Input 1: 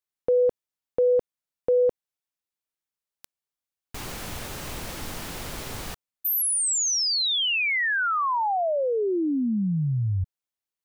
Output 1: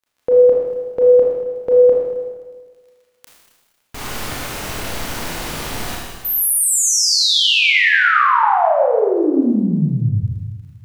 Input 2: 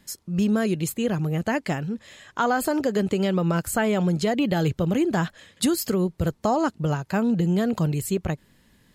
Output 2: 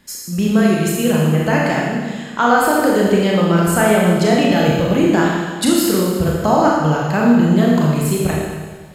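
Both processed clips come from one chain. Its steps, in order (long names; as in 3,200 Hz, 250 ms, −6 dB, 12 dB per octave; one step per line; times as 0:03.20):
surface crackle 21 per second −51 dBFS
parametric band 1,400 Hz +3 dB 2.9 octaves
four-comb reverb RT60 1.5 s, combs from 26 ms, DRR −3.5 dB
level +3 dB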